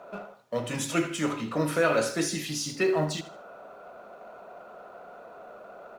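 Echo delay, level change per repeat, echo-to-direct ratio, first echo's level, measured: 79 ms, −10.0 dB, −14.5 dB, −15.0 dB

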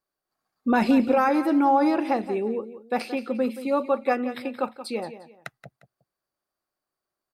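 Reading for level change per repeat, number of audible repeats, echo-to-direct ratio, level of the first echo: −10.5 dB, 2, −12.5 dB, −13.0 dB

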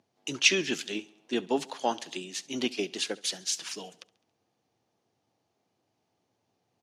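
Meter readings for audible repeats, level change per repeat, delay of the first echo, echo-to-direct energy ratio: 3, −4.5 dB, 69 ms, −20.5 dB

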